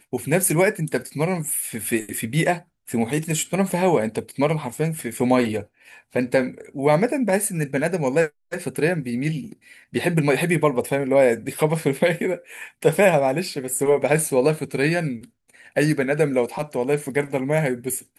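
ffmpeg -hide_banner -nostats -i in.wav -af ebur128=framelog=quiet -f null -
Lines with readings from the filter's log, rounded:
Integrated loudness:
  I:         -22.0 LUFS
  Threshold: -32.2 LUFS
Loudness range:
  LRA:         2.7 LU
  Threshold: -42.2 LUFS
  LRA low:   -23.4 LUFS
  LRA high:  -20.6 LUFS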